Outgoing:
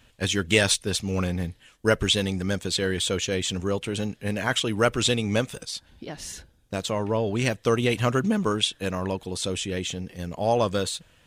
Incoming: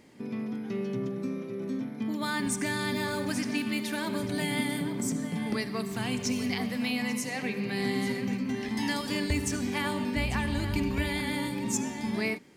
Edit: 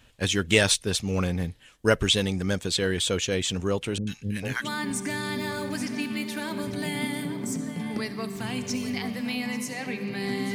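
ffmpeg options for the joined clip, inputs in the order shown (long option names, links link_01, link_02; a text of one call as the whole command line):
ffmpeg -i cue0.wav -i cue1.wav -filter_complex "[0:a]asettb=1/sr,asplit=3[link_01][link_02][link_03];[link_01]atrim=end=3.984[link_04];[link_02]atrim=start=3.98:end=4.69,asetpts=PTS-STARTPTS,afade=type=in:duration=0.004:curve=qsin,afade=type=out:start_time=0.706:duration=0.004:curve=qsin,acrossover=split=340|1300[link_05][link_06][link_07];[link_07]adelay=90[link_08];[link_06]adelay=440[link_09];[link_05][link_09][link_08]amix=inputs=3:normalize=0,atrim=end_sample=31311[link_10];[link_03]atrim=start=4.686[link_11];[link_04][link_10]acrossfade=duration=0.004:curve1=hsin:curve2=qsin[link_12];[link_12][link_11]acrossfade=duration=0.004:curve1=qsin:curve2=hsin,apad=whole_dur=10.54,atrim=end=10.54,atrim=end=4.69,asetpts=PTS-STARTPTS[link_13];[1:a]atrim=start=2.15:end=8.1,asetpts=PTS-STARTPTS[link_14];[link_13][link_14]acrossfade=duration=0.1:curve1=tri:curve2=tri" out.wav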